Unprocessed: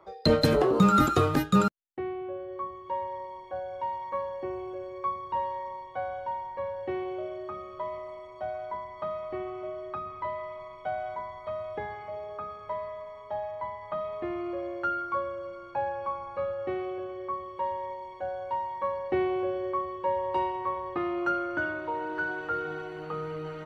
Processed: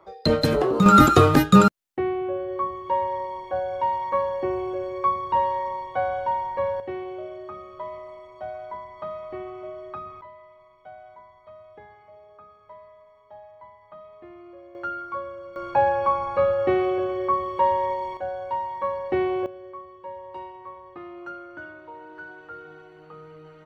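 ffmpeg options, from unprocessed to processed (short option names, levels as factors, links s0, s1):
-af "asetnsamples=n=441:p=0,asendcmd='0.86 volume volume 8.5dB;6.8 volume volume 0dB;10.21 volume volume -11.5dB;14.75 volume volume -1.5dB;15.56 volume volume 11dB;18.17 volume volume 3.5dB;19.46 volume volume -9.5dB',volume=1.19"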